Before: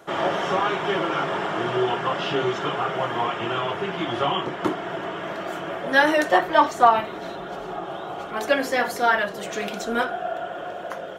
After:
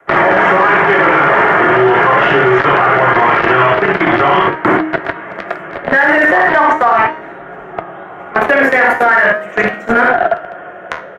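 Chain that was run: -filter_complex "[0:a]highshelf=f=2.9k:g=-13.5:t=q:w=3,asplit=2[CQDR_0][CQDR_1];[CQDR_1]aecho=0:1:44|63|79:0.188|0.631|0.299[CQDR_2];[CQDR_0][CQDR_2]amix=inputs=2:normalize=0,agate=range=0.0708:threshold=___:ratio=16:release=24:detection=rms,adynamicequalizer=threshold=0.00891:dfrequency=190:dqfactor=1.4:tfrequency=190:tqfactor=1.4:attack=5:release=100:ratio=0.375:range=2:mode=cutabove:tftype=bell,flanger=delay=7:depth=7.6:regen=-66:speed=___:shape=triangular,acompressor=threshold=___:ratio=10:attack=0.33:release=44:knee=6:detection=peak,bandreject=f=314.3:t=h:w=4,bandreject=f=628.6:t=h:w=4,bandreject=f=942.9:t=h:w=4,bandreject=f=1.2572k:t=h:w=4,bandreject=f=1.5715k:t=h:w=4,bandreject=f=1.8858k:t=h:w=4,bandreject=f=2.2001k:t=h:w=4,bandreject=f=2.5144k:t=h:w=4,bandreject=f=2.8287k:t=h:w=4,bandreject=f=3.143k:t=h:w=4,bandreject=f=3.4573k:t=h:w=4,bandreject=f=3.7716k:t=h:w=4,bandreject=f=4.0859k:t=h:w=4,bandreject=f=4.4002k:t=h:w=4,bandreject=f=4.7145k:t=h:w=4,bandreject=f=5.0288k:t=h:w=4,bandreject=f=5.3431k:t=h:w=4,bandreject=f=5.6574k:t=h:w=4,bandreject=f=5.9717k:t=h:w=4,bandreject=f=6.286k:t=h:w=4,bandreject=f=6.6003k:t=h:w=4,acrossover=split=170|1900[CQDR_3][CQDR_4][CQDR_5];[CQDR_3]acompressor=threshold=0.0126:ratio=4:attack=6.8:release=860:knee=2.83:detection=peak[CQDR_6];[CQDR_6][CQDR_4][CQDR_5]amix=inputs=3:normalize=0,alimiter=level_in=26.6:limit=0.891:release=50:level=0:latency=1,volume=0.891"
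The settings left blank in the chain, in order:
0.0562, 0.4, 0.0794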